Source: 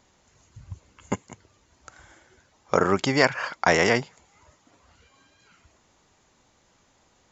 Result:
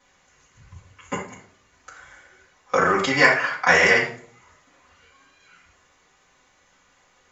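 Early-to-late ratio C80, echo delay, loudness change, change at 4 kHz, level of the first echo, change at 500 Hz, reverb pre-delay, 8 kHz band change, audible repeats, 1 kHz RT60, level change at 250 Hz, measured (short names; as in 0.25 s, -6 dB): 10.5 dB, none, +4.5 dB, +2.5 dB, none, +1.0 dB, 4 ms, n/a, none, 0.40 s, -2.0 dB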